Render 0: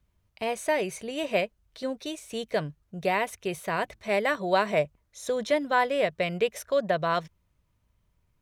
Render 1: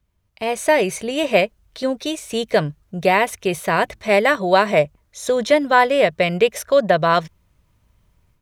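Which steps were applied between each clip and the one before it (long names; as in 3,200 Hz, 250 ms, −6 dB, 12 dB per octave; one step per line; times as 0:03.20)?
automatic gain control gain up to 10 dB
level +1 dB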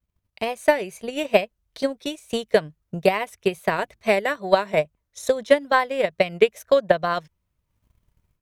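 transient designer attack +11 dB, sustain −5 dB
pitch vibrato 2.3 Hz 70 cents
high-shelf EQ 12,000 Hz +5 dB
level −10 dB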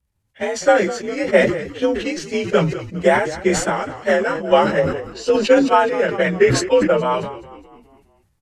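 partials spread apart or drawn together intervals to 89%
echo with shifted repeats 206 ms, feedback 51%, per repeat −52 Hz, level −16 dB
level that may fall only so fast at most 67 dB per second
level +5 dB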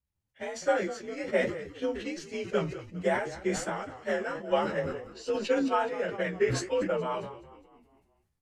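flanger 1.3 Hz, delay 9.7 ms, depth 7 ms, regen +58%
level −9 dB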